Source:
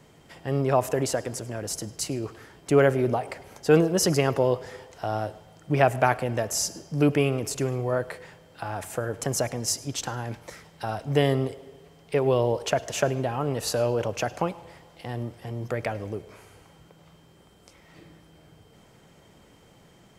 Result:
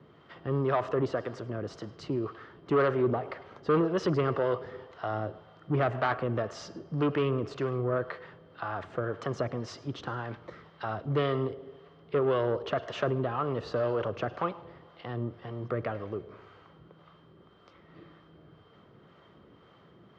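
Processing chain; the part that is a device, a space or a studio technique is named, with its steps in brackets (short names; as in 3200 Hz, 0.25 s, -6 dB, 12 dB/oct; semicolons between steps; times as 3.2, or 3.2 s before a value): guitar amplifier with harmonic tremolo (harmonic tremolo 1.9 Hz, depth 50%, crossover 570 Hz; soft clip -21.5 dBFS, distortion -10 dB; speaker cabinet 76–3600 Hz, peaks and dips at 370 Hz +4 dB, 830 Hz -4 dB, 1200 Hz +9 dB, 2400 Hz -7 dB)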